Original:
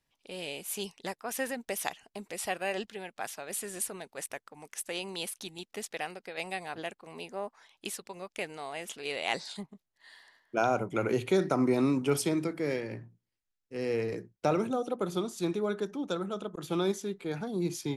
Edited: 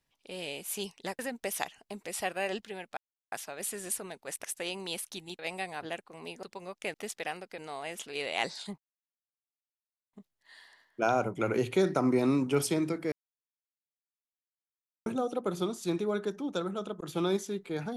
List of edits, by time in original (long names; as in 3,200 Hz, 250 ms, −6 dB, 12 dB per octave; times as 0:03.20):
0:01.19–0:01.44: remove
0:03.22: splice in silence 0.35 s
0:04.34–0:04.73: remove
0:05.68–0:06.32: move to 0:08.48
0:07.36–0:07.97: remove
0:09.68: splice in silence 1.35 s
0:12.67–0:14.61: silence